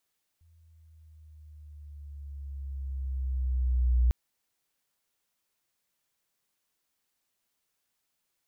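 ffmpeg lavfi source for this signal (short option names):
-f lavfi -i "aevalsrc='pow(10,(-19+39*(t/3.7-1))/20)*sin(2*PI*83.1*3.7/(-5.5*log(2)/12)*(exp(-5.5*log(2)/12*t/3.7)-1))':d=3.7:s=44100"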